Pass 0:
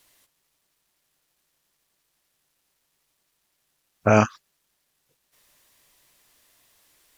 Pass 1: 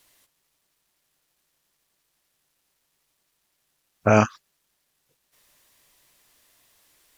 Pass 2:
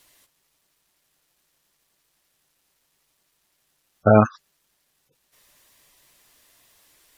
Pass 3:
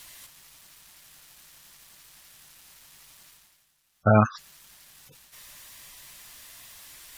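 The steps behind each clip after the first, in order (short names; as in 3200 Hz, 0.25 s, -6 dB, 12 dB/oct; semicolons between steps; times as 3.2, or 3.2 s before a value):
nothing audible
spectral gate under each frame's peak -15 dB strong; gain +3.5 dB
bell 410 Hz -9.5 dB 1.6 oct; reverse; upward compressor, threshold -36 dBFS; reverse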